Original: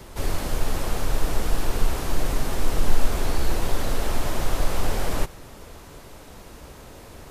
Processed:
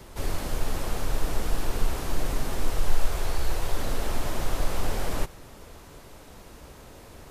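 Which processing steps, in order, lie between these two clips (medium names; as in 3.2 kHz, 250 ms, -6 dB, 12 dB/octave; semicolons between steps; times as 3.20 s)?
2.70–3.77 s: peaking EQ 240 Hz -10 dB 0.78 oct; trim -3.5 dB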